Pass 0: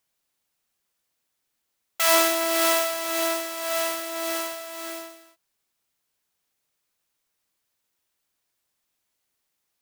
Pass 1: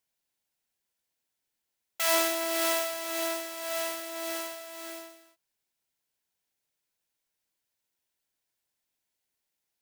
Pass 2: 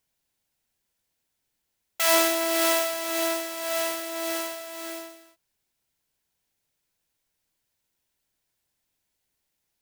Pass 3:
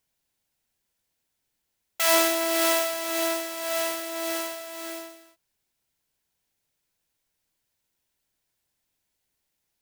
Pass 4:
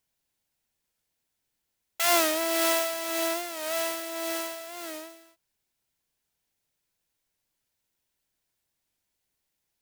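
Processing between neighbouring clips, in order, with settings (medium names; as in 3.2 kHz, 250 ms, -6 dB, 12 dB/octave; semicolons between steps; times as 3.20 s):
band-stop 1.2 kHz, Q 6.3; trim -6 dB
bass shelf 180 Hz +9 dB; trim +4.5 dB
no audible change
warped record 45 rpm, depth 100 cents; trim -2 dB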